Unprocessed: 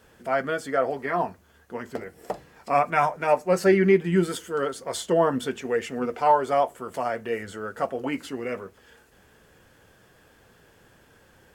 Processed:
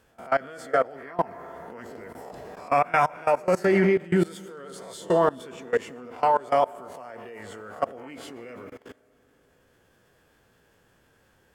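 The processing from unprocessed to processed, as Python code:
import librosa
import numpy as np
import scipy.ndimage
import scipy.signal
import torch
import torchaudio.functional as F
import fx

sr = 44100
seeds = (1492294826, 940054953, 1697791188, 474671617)

y = fx.spec_swells(x, sr, rise_s=0.32)
y = fx.rev_freeverb(y, sr, rt60_s=3.2, hf_ratio=0.45, predelay_ms=65, drr_db=12.5)
y = fx.level_steps(y, sr, step_db=22)
y = F.gain(torch.from_numpy(y), 3.0).numpy()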